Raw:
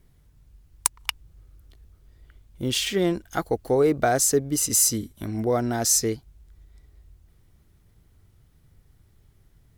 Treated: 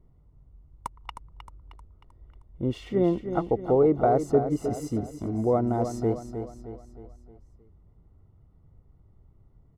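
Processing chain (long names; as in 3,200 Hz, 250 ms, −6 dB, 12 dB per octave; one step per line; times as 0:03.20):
Savitzky-Golay smoothing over 65 samples
on a send: repeating echo 311 ms, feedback 47%, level −9 dB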